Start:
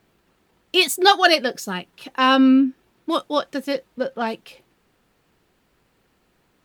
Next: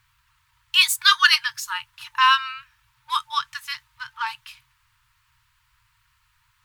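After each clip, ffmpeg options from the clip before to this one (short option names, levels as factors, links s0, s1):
-af "afftfilt=real='re*(1-between(b*sr/4096,130,890))':imag='im*(1-between(b*sr/4096,130,890))':win_size=4096:overlap=0.75,volume=1.26"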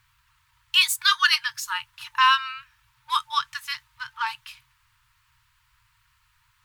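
-af "alimiter=limit=0.473:level=0:latency=1:release=468"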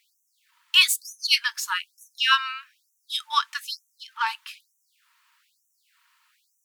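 -af "afftfilt=real='re*gte(b*sr/1024,480*pow(5800/480,0.5+0.5*sin(2*PI*1.1*pts/sr)))':imag='im*gte(b*sr/1024,480*pow(5800/480,0.5+0.5*sin(2*PI*1.1*pts/sr)))':win_size=1024:overlap=0.75,volume=1.26"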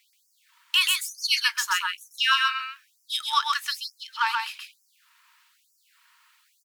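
-filter_complex "[0:a]acrossover=split=1300|2600|5600[s0][s1][s2][s3];[s0]acompressor=threshold=0.0447:ratio=4[s4];[s1]acompressor=threshold=0.0447:ratio=4[s5];[s2]acompressor=threshold=0.0224:ratio=4[s6];[s3]acompressor=threshold=0.0224:ratio=4[s7];[s4][s5][s6][s7]amix=inputs=4:normalize=0,aecho=1:1:130:0.668,volume=1.33"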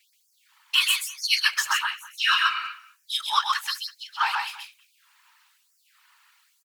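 -filter_complex "[0:a]afftfilt=real='hypot(re,im)*cos(2*PI*random(0))':imag='hypot(re,im)*sin(2*PI*random(1))':win_size=512:overlap=0.75,asplit=2[s0][s1];[s1]adelay=200,highpass=300,lowpass=3400,asoftclip=type=hard:threshold=0.0794,volume=0.126[s2];[s0][s2]amix=inputs=2:normalize=0,volume=2.11"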